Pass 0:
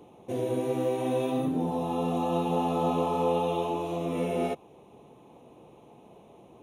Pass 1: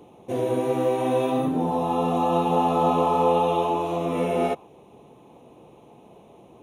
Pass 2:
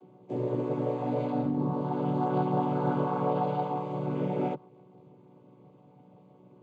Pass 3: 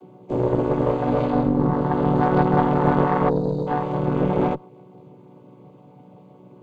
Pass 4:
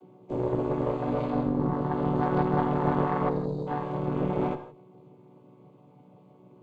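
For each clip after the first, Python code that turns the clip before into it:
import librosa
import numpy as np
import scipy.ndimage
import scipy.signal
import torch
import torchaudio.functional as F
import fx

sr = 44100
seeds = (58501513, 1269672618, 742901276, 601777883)

y1 = fx.dynamic_eq(x, sr, hz=1100.0, q=0.7, threshold_db=-42.0, ratio=4.0, max_db=6)
y1 = y1 * 10.0 ** (3.0 / 20.0)
y2 = fx.chord_vocoder(y1, sr, chord='minor triad', root=47)
y2 = y2 * 10.0 ** (-6.0 / 20.0)
y3 = fx.spec_box(y2, sr, start_s=3.29, length_s=0.38, low_hz=540.0, high_hz=3700.0, gain_db=-25)
y3 = fx.cheby_harmonics(y3, sr, harmonics=(2, 6), levels_db=(-8, -28), full_scale_db=-16.0)
y3 = y3 * 10.0 ** (8.5 / 20.0)
y4 = fx.rev_gated(y3, sr, seeds[0], gate_ms=190, shape='flat', drr_db=9.5)
y4 = y4 * 10.0 ** (-7.5 / 20.0)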